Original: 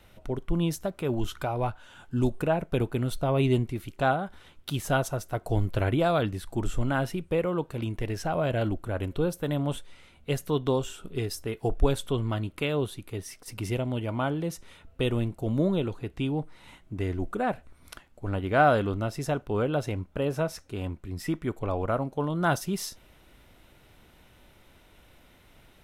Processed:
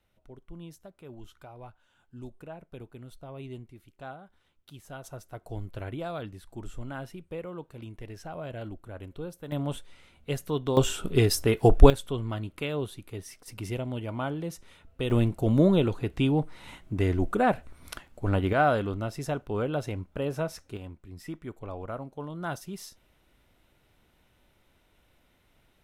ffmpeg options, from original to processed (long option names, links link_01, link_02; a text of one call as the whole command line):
ffmpeg -i in.wav -af "asetnsamples=nb_out_samples=441:pad=0,asendcmd='5.04 volume volume -11dB;9.52 volume volume -2.5dB;10.77 volume volume 9dB;11.9 volume volume -3.5dB;15.1 volume volume 4.5dB;18.53 volume volume -2.5dB;20.77 volume volume -9dB',volume=-17.5dB" out.wav